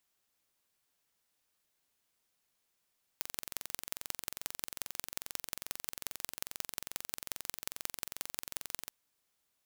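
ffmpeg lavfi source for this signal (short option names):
-f lavfi -i "aevalsrc='0.447*eq(mod(n,1969),0)*(0.5+0.5*eq(mod(n,7876),0))':d=5.68:s=44100"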